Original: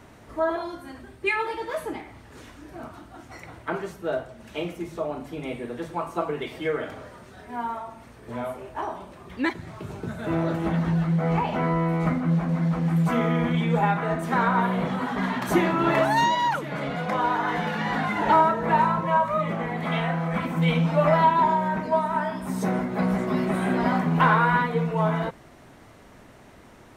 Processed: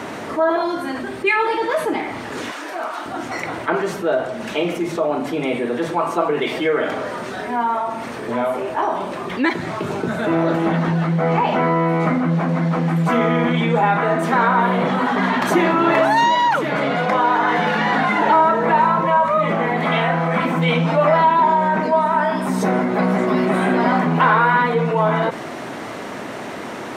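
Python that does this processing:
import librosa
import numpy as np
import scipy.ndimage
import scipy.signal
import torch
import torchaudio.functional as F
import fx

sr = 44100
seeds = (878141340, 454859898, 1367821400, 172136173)

y = fx.highpass(x, sr, hz=620.0, slope=12, at=(2.51, 3.06))
y = scipy.signal.sosfilt(scipy.signal.butter(2, 220.0, 'highpass', fs=sr, output='sos'), y)
y = fx.high_shelf(y, sr, hz=8600.0, db=-10.5)
y = fx.env_flatten(y, sr, amount_pct=50)
y = y * 10.0 ** (3.5 / 20.0)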